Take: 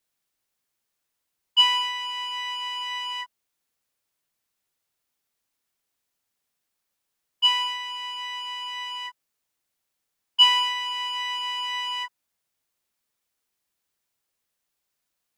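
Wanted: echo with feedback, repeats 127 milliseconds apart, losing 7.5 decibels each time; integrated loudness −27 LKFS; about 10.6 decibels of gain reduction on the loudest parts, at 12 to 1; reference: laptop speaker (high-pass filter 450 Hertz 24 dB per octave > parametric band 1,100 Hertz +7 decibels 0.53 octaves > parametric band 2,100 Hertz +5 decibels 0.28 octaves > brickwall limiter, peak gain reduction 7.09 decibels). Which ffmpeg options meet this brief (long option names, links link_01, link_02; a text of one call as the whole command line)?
ffmpeg -i in.wav -af "acompressor=threshold=-23dB:ratio=12,highpass=frequency=450:width=0.5412,highpass=frequency=450:width=1.3066,equalizer=frequency=1100:width_type=o:width=0.53:gain=7,equalizer=frequency=2100:width_type=o:width=0.28:gain=5,aecho=1:1:127|254|381|508|635:0.422|0.177|0.0744|0.0312|0.0131,volume=2dB,alimiter=limit=-20dB:level=0:latency=1" out.wav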